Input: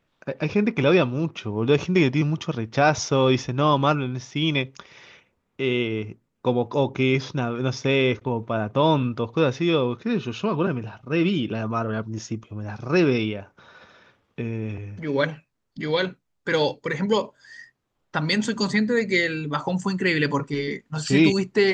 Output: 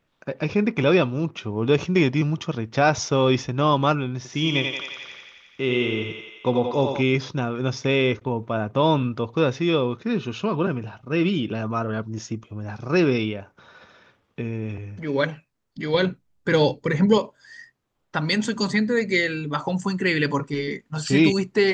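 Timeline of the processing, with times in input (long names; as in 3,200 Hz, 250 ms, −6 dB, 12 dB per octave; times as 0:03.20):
0:04.16–0:07.02: feedback echo with a high-pass in the loop 87 ms, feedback 73%, high-pass 440 Hz, level −3.5 dB
0:15.94–0:17.18: low-shelf EQ 310 Hz +10 dB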